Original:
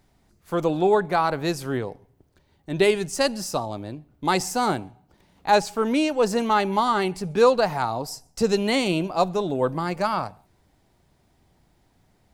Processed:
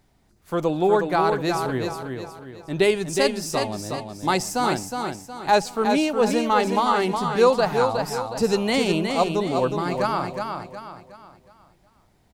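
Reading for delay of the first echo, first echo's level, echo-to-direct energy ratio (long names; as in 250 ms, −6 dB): 365 ms, −5.5 dB, −5.0 dB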